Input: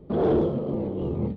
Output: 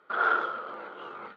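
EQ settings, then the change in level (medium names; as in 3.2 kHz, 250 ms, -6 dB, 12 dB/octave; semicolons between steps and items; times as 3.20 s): resonant high-pass 1.4 kHz, resonance Q 14; distance through air 58 m; +4.0 dB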